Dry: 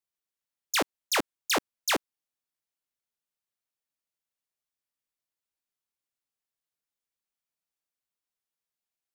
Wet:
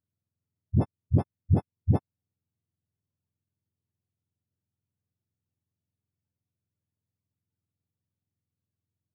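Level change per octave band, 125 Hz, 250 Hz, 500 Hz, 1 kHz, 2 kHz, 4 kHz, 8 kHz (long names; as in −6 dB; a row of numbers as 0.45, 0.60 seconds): +29.5 dB, +7.0 dB, −3.0 dB, −9.5 dB, below −25 dB, below −35 dB, below −35 dB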